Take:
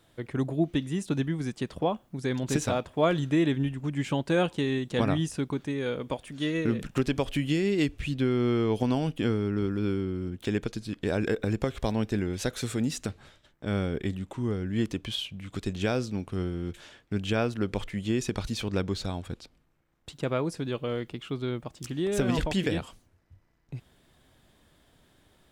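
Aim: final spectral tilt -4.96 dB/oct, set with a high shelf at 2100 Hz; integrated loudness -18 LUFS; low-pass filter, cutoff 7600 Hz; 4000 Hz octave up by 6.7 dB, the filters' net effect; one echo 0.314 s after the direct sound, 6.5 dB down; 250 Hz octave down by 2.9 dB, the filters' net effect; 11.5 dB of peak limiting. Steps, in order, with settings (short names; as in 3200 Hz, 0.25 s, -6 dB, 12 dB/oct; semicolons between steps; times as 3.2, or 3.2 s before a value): LPF 7600 Hz; bell 250 Hz -4 dB; high shelf 2100 Hz +3 dB; bell 4000 Hz +6 dB; limiter -22 dBFS; echo 0.314 s -6.5 dB; gain +14.5 dB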